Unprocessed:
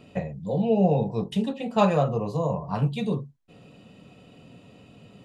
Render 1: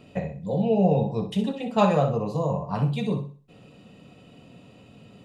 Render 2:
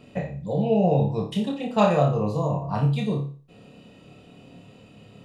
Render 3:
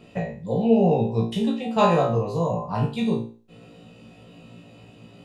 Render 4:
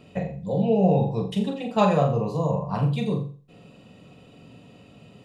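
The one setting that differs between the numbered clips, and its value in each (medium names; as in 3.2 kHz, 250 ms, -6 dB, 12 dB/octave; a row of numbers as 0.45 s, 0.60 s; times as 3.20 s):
flutter echo, walls apart: 10.8 m, 4.9 m, 3 m, 7.3 m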